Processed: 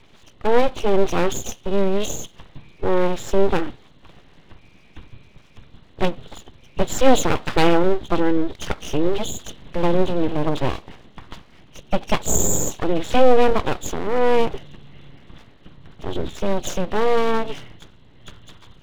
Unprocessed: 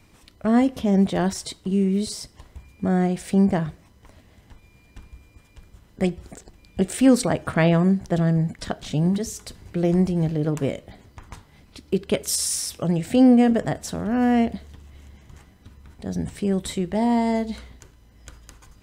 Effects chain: knee-point frequency compression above 2.7 kHz 4:1; level-controlled noise filter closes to 3 kHz, open at -16.5 dBFS; full-wave rectifier; trim +5 dB

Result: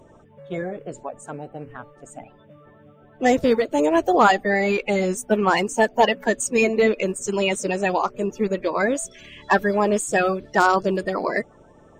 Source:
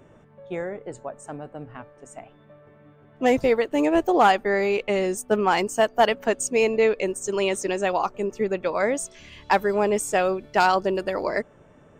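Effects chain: coarse spectral quantiser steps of 30 dB; trim +2.5 dB

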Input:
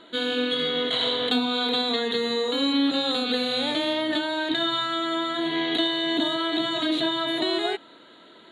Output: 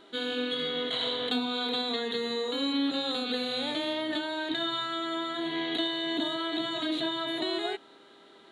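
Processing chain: mains buzz 400 Hz, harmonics 27, -55 dBFS -7 dB/octave; trim -6 dB

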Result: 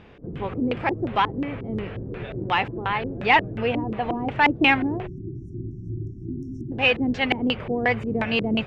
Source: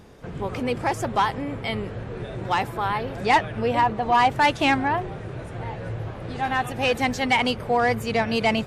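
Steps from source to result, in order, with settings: LFO low-pass square 2.8 Hz 330–2700 Hz; spectral selection erased 5.07–6.72 s, 400–5300 Hz; trim -1 dB

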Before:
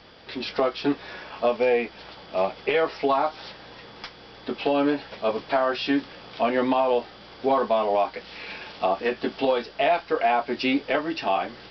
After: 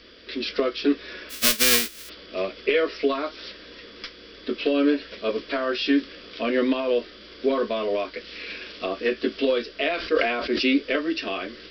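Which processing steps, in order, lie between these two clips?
1.29–2.08 s: formants flattened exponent 0.1; static phaser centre 340 Hz, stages 4; 9.96–10.68 s: decay stretcher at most 39 dB/s; trim +3.5 dB

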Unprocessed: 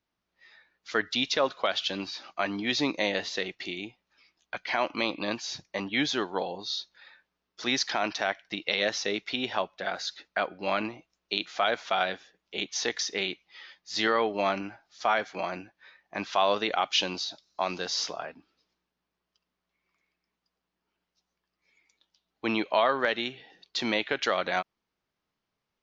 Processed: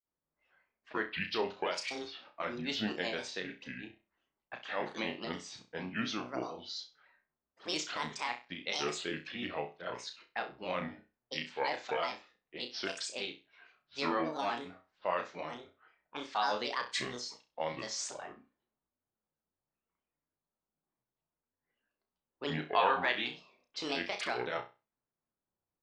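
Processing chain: granulator 171 ms, grains 13 per s, spray 18 ms, pitch spread up and down by 7 st; time-frequency box 22.69–23.35 s, 710–3900 Hz +6 dB; level-controlled noise filter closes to 1.2 kHz, open at -27.5 dBFS; on a send: flutter echo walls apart 5.6 m, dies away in 0.28 s; on the sum: trim -7 dB

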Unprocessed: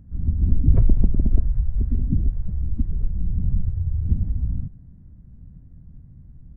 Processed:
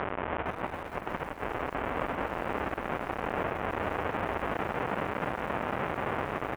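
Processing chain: one-bit delta coder 16 kbps, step -17.5 dBFS; tilt shelf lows -8.5 dB, about 640 Hz; compressor with a negative ratio -25 dBFS, ratio -0.5; band-pass filter 610 Hz, Q 0.63; distance through air 260 m; echo from a far wall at 17 m, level -21 dB; bit-crushed delay 460 ms, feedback 35%, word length 8-bit, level -7.5 dB

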